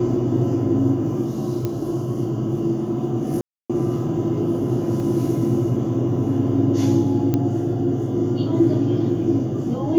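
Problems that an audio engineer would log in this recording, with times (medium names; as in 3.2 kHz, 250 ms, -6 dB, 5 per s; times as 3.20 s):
1.65 s: pop -12 dBFS
3.41–3.70 s: dropout 286 ms
5.00 s: dropout 2.2 ms
7.34 s: pop -9 dBFS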